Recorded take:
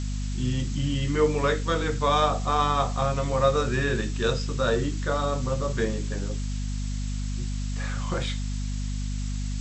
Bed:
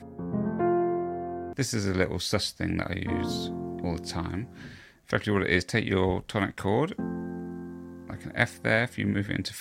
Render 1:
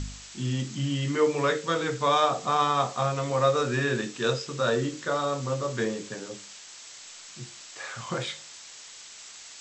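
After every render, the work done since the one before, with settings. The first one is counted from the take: de-hum 50 Hz, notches 11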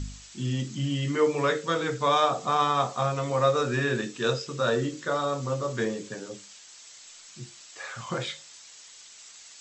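denoiser 6 dB, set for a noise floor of -46 dBFS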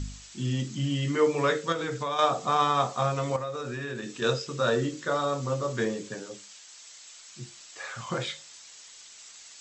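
1.72–2.19 compressor 5:1, threshold -27 dBFS; 3.36–4.22 compressor 4:1, threshold -32 dBFS; 6.22–7.39 low shelf 330 Hz -6 dB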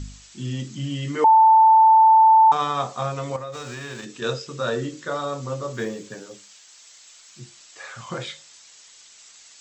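1.24–2.52 bleep 885 Hz -9.5 dBFS; 3.52–4.04 spectral whitening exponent 0.6; 5.73–7.4 companded quantiser 8-bit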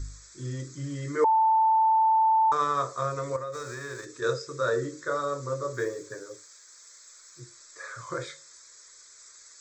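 fixed phaser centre 780 Hz, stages 6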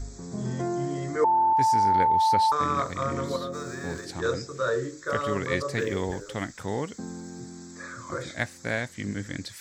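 add bed -5 dB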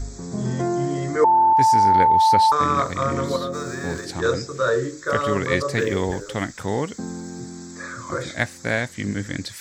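gain +6 dB

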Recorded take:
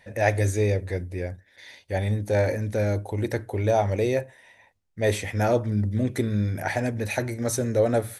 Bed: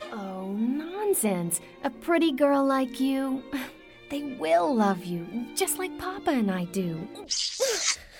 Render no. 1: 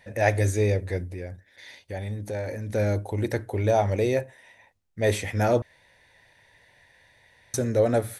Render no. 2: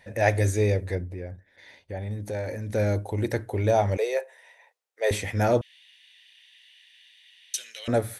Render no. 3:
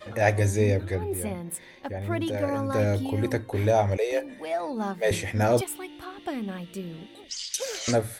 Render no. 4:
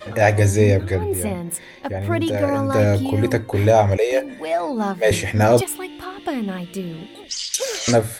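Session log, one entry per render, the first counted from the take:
1.13–2.7 compressor 2:1, threshold -34 dBFS; 5.62–7.54 room tone
0.95–2.11 high shelf 2700 Hz -11 dB; 3.97–5.11 elliptic high-pass 430 Hz, stop band 60 dB; 5.61–7.88 resonant high-pass 3000 Hz, resonance Q 9.6
add bed -7 dB
gain +7.5 dB; limiter -2 dBFS, peak gain reduction 2.5 dB

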